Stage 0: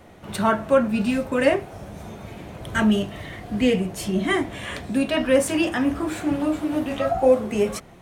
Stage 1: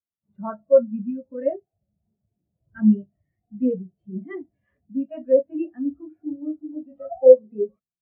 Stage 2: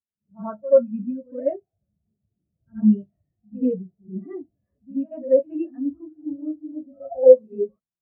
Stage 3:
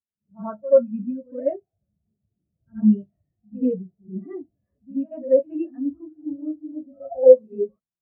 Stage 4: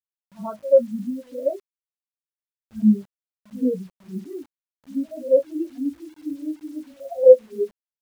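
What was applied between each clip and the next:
LPF 2900 Hz 12 dB/oct; spectral expander 2.5:1; gain +4.5 dB
low-pass opened by the level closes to 470 Hz, open at -14 dBFS; pre-echo 81 ms -18 dB
nothing audible
formant sharpening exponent 1.5; bit-crush 9-bit

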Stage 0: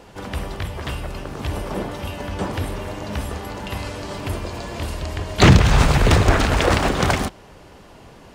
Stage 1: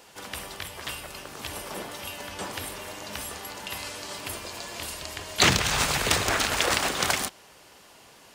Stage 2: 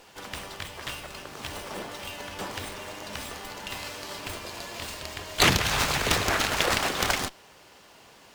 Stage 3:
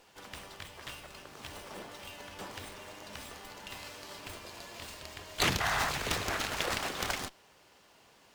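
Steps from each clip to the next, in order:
tilt +3.5 dB/oct; gain -6.5 dB
running maximum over 3 samples
painted sound noise, 5.6–5.9, 630–2100 Hz -24 dBFS; gain -8.5 dB

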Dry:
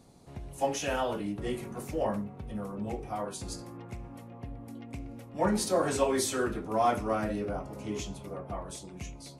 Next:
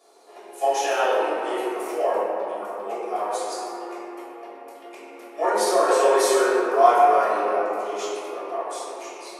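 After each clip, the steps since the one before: elliptic high-pass 370 Hz, stop band 80 dB; reverb RT60 2.9 s, pre-delay 3 ms, DRR -9 dB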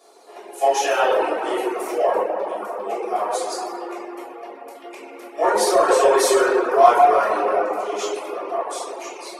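in parallel at -9 dB: soft clip -19 dBFS, distortion -9 dB; on the sum: reverb removal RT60 0.58 s; gain +2.5 dB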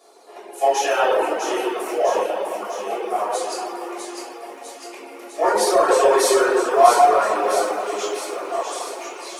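short-mantissa float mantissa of 6-bit; thin delay 0.652 s, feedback 66%, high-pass 2500 Hz, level -5 dB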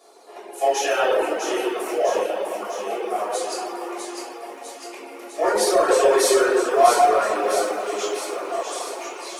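dynamic EQ 940 Hz, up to -6 dB, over -32 dBFS, Q 2.1

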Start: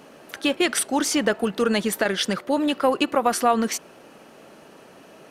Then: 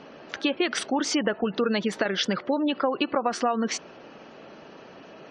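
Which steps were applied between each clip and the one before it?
LPF 6100 Hz 24 dB/oct; spectral gate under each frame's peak -30 dB strong; compressor 4:1, threshold -23 dBFS, peak gain reduction 8.5 dB; gain +1.5 dB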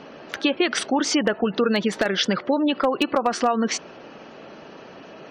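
wavefolder -13.5 dBFS; gain +4 dB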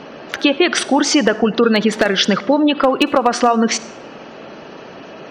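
reverb RT60 0.80 s, pre-delay 47 ms, DRR 17 dB; gain +7 dB

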